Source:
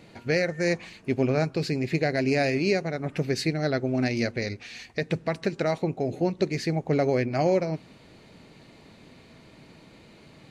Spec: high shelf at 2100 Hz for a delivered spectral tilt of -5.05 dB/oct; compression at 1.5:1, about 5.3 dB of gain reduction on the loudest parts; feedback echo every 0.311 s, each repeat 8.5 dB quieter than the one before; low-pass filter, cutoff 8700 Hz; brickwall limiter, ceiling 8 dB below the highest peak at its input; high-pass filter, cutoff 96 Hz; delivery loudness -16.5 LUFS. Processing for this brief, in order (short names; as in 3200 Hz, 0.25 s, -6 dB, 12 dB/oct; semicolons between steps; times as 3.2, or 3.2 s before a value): HPF 96 Hz; LPF 8700 Hz; high shelf 2100 Hz +7 dB; compressor 1.5:1, threshold -33 dBFS; limiter -20 dBFS; feedback echo 0.311 s, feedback 38%, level -8.5 dB; gain +15.5 dB